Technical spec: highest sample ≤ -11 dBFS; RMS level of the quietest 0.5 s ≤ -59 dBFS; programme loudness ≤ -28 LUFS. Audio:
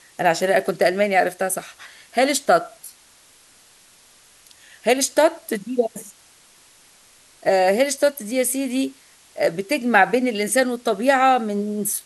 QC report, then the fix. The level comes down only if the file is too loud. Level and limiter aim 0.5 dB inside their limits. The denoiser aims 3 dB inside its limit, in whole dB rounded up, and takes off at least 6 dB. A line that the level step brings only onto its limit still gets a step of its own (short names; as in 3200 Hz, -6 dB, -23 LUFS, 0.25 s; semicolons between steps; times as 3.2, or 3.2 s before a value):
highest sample -3.0 dBFS: fail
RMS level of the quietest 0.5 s -52 dBFS: fail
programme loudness -20.0 LUFS: fail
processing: gain -8.5 dB